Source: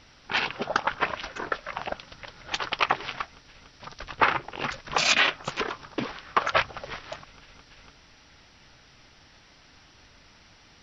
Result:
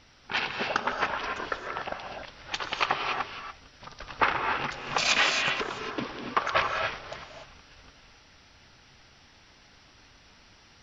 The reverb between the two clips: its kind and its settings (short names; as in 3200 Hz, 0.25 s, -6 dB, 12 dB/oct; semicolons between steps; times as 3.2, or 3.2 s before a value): non-linear reverb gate 0.31 s rising, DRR 2.5 dB; gain -3 dB